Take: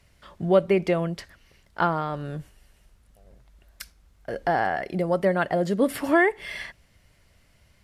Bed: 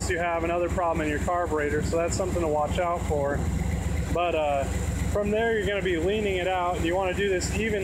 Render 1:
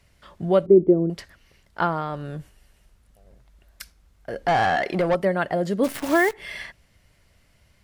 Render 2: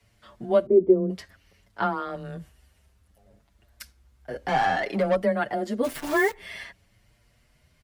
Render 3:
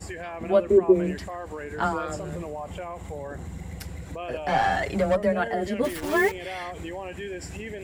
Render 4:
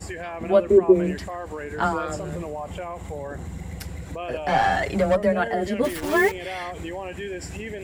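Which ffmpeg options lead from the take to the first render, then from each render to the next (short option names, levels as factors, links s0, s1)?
-filter_complex "[0:a]asettb=1/sr,asplit=3[s0][s1][s2];[s0]atrim=end=0.664[s3];[s1]atrim=start=0.66:end=1.1,asetpts=PTS-STARTPTS,afade=t=in:d=0.004:c=qsin,afade=t=out:st=0.436:d=0.004:c=qsin,lowpass=f=350:t=q:w=3.6[s4];[s2]atrim=start=1.096[s5];[s3][s4]acrossfade=d=0.004:c1=hsin:c2=qsin[s6];[s6][s5]acrossfade=d=0.004:c1=qsin:c2=hsin,asettb=1/sr,asplit=3[s7][s8][s9];[s7]atrim=end=4.484[s10];[s8]atrim=start=4.48:end=5.15,asetpts=PTS-STARTPTS,afade=t=in:d=0.004:c=qsin,afade=t=out:st=0.666:d=0.004:c=qsin,asplit=2[s11][s12];[s12]highpass=f=720:p=1,volume=8.91,asoftclip=type=tanh:threshold=0.224[s13];[s11][s13]amix=inputs=2:normalize=0,lowpass=f=3400:p=1,volume=0.501[s14];[s9]atrim=start=5.146[s15];[s10][s14]acrossfade=d=0.004:c1=hsin:c2=qsin[s16];[s16][s15]acrossfade=d=0.004:c1=qsin:c2=hsin,asplit=3[s17][s18][s19];[s17]afade=t=out:st=5.83:d=0.02[s20];[s18]acrusher=bits=6:dc=4:mix=0:aa=0.000001,afade=t=in:st=5.83:d=0.02,afade=t=out:st=6.32:d=0.02[s21];[s19]afade=t=in:st=6.32:d=0.02[s22];[s20][s21][s22]amix=inputs=3:normalize=0"
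-filter_complex "[0:a]afreqshift=16,asplit=2[s0][s1];[s1]adelay=6.8,afreqshift=0.58[s2];[s0][s2]amix=inputs=2:normalize=1"
-filter_complex "[1:a]volume=0.316[s0];[0:a][s0]amix=inputs=2:normalize=0"
-af "volume=1.33"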